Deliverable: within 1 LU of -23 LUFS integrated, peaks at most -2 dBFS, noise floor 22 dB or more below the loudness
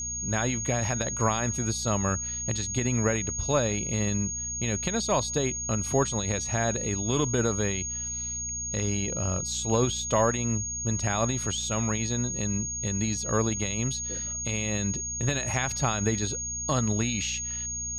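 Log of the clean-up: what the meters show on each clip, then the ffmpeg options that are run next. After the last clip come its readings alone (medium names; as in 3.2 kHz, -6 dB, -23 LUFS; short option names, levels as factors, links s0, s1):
hum 60 Hz; highest harmonic 240 Hz; hum level -40 dBFS; steady tone 6.6 kHz; tone level -31 dBFS; loudness -27.5 LUFS; peak level -11.5 dBFS; loudness target -23.0 LUFS
-> -af "bandreject=f=60:t=h:w=4,bandreject=f=120:t=h:w=4,bandreject=f=180:t=h:w=4,bandreject=f=240:t=h:w=4"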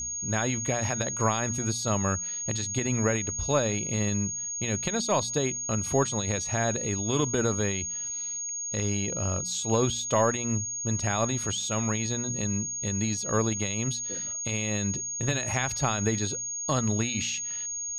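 hum not found; steady tone 6.6 kHz; tone level -31 dBFS
-> -af "bandreject=f=6600:w=30"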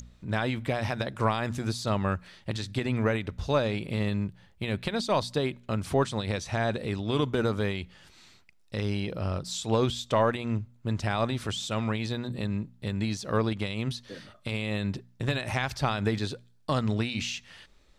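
steady tone not found; loudness -30.0 LUFS; peak level -12.5 dBFS; loudness target -23.0 LUFS
-> -af "volume=2.24"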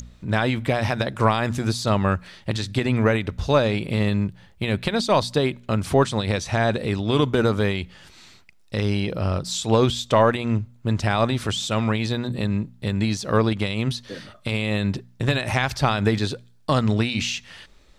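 loudness -23.0 LUFS; peak level -5.5 dBFS; noise floor -53 dBFS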